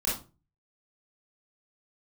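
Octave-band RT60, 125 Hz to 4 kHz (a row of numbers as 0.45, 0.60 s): 0.60, 0.40, 0.35, 0.30, 0.25, 0.25 s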